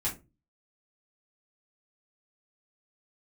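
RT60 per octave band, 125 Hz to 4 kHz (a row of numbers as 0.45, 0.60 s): 0.50, 0.40, 0.35, 0.20, 0.20, 0.15 s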